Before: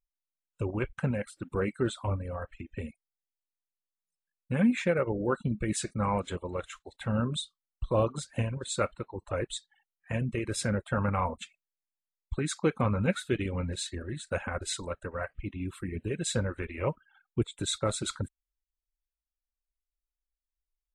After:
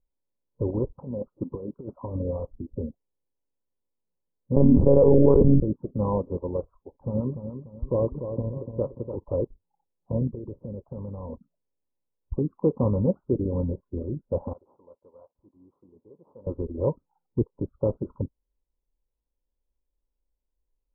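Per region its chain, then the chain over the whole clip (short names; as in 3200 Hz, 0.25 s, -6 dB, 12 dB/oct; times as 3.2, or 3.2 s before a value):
0.84–2.31 low shelf 89 Hz -8 dB + negative-ratio compressor -35 dBFS, ratio -0.5
4.56–5.6 notches 60/120/180/240/300/360/420/480 Hz + monotone LPC vocoder at 8 kHz 140 Hz + fast leveller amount 100%
6.74–9.17 harmonic tremolo 9.2 Hz, crossover 600 Hz + feedback echo 0.293 s, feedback 31%, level -10 dB
10.27–11.34 dynamic EQ 950 Hz, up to -6 dB, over -43 dBFS, Q 0.97 + compressor, threshold -38 dBFS
14.53–16.47 CVSD 32 kbps + differentiator
whole clip: per-bin compression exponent 0.6; elliptic low-pass 1000 Hz, stop band 50 dB; spectral expander 1.5:1; gain +2 dB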